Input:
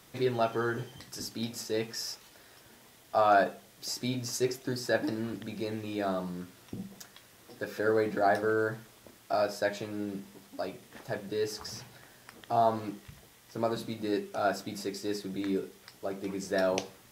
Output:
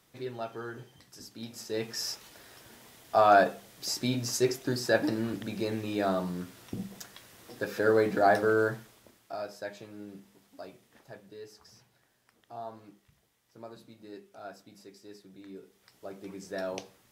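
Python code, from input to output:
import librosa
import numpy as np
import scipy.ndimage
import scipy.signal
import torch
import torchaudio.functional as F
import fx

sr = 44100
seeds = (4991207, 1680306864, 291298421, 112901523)

y = fx.gain(x, sr, db=fx.line((1.29, -9.0), (2.06, 3.0), (8.64, 3.0), (9.33, -9.0), (10.73, -9.0), (11.52, -15.5), (15.52, -15.5), (15.98, -7.0)))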